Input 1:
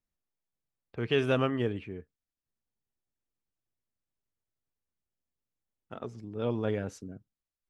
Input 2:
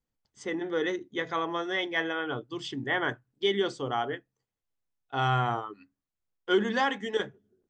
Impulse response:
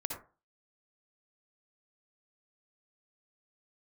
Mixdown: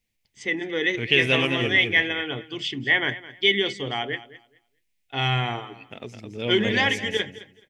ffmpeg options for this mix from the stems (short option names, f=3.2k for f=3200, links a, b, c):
-filter_complex "[0:a]volume=2dB,asplit=2[a][b];[b]volume=-6.5dB[c];[1:a]bass=f=250:g=3,treble=f=4k:g=-8,volume=1.5dB,asplit=2[d][e];[e]volume=-17dB[f];[c][f]amix=inputs=2:normalize=0,aecho=0:1:213|426|639:1|0.19|0.0361[g];[a][d][g]amix=inputs=3:normalize=0,highshelf=f=1.7k:t=q:w=3:g=8.5"